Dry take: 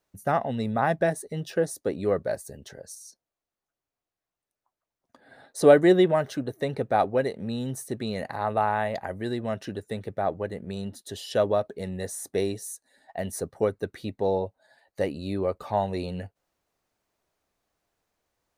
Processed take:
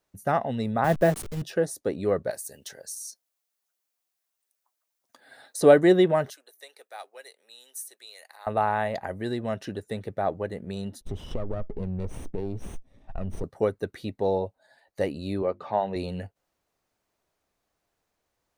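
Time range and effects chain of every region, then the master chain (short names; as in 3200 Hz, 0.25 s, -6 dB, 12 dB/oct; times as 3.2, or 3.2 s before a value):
0.84–1.42 level-crossing sampler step -33.5 dBFS + low shelf 500 Hz +5.5 dB + three-band expander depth 70%
2.3–5.61 tilt +3.5 dB/oct + compressor 3:1, threshold -34 dBFS
6.3–8.47 HPF 380 Hz 24 dB/oct + differentiator
11.01–13.44 minimum comb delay 0.33 ms + tilt -4.5 dB/oct + compressor 4:1, threshold -28 dBFS
15.42–15.96 BPF 140–3400 Hz + notches 50/100/150/200/250/300/350 Hz
whole clip: dry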